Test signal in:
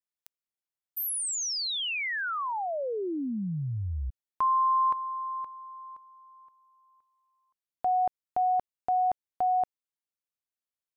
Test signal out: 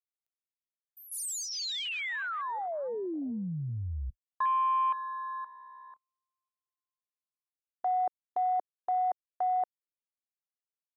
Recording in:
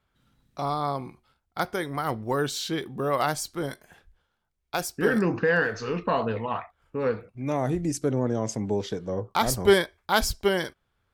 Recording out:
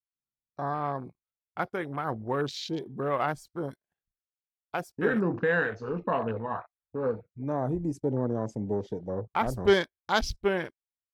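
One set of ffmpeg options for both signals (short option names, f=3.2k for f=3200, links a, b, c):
-af "agate=range=-19dB:threshold=-52dB:ratio=16:release=31:detection=peak,afwtdn=0.02,volume=-3dB"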